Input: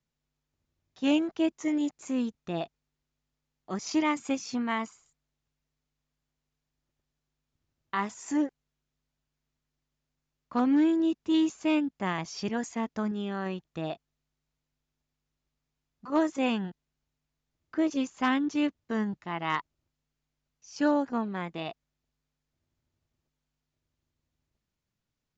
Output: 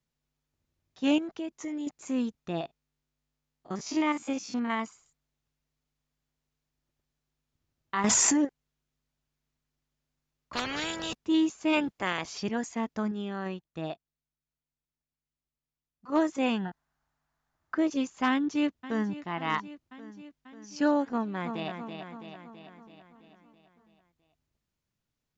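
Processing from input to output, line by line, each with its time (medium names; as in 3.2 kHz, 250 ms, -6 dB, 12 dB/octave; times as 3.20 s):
1.18–1.87 s: compression 4:1, threshold -33 dBFS
2.61–4.80 s: spectrogram pixelated in time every 50 ms
8.04–8.45 s: level flattener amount 100%
10.53–11.15 s: spectrum-flattening compressor 4:1
11.72–12.37 s: spectral peaks clipped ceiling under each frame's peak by 15 dB
13.07–16.09 s: upward expansion, over -51 dBFS
16.65–17.75 s: high-order bell 1.1 kHz +12.5 dB
18.29–19.15 s: echo throw 540 ms, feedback 70%, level -15 dB
21.05–21.70 s: echo throw 330 ms, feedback 60%, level -6.5 dB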